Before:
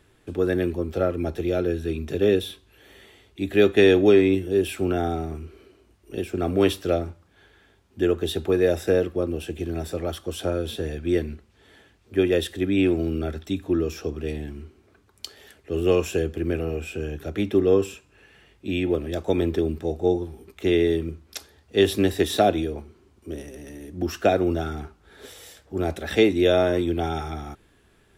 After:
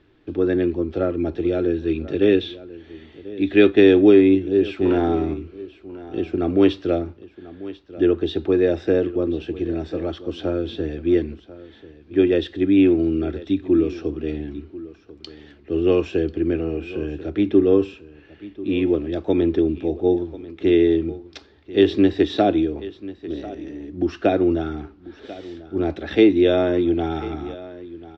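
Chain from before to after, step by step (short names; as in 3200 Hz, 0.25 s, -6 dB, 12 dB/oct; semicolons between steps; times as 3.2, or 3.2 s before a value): bell 310 Hz +9.5 dB 0.54 oct; 4.85–5.34 sample leveller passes 1; inverse Chebyshev low-pass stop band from 12000 Hz, stop band 60 dB; echo 1.041 s -17.5 dB; 1.73–3.7 dynamic EQ 2300 Hz, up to +6 dB, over -38 dBFS, Q 0.88; gain -1 dB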